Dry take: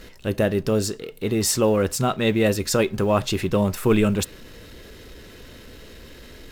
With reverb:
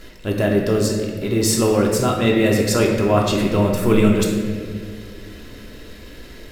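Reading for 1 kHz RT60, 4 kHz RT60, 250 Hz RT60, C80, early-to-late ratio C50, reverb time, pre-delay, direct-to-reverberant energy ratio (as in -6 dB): 1.7 s, 1.4 s, 2.7 s, 4.5 dB, 2.5 dB, 2.0 s, 3 ms, -1.0 dB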